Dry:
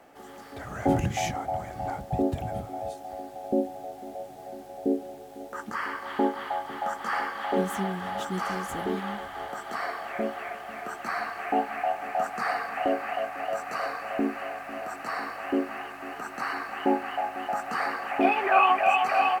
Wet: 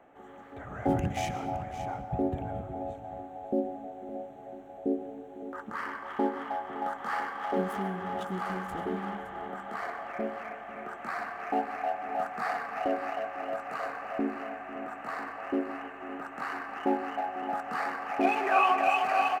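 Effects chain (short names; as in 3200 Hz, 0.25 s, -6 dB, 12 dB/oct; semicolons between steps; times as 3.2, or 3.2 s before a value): Wiener smoothing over 9 samples; echo 0.566 s -12.5 dB; reverb RT60 1.4 s, pre-delay 0.111 s, DRR 11 dB; gain -3.5 dB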